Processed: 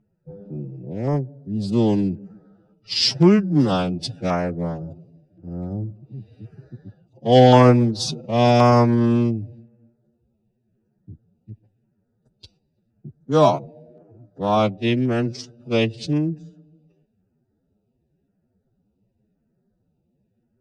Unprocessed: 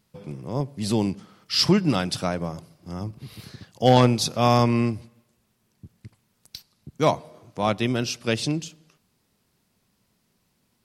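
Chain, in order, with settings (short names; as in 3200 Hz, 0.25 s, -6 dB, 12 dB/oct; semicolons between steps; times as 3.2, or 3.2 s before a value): Wiener smoothing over 41 samples; LPF 8800 Hz 24 dB/oct; tone controls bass -2 dB, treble -5 dB; time stretch by phase-locked vocoder 1.9×; LFO notch saw down 0.93 Hz 990–4200 Hz; gain +5.5 dB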